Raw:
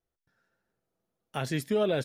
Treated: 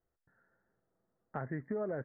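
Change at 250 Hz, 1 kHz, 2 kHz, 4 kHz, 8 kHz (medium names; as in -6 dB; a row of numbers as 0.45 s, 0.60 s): -8.5 dB, -7.0 dB, -9.5 dB, under -40 dB, under -35 dB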